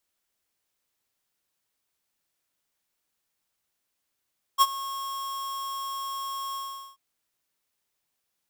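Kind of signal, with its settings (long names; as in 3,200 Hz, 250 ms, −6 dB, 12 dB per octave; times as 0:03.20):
note with an ADSR envelope square 1,090 Hz, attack 35 ms, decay 43 ms, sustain −17.5 dB, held 1.97 s, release 417 ms −16 dBFS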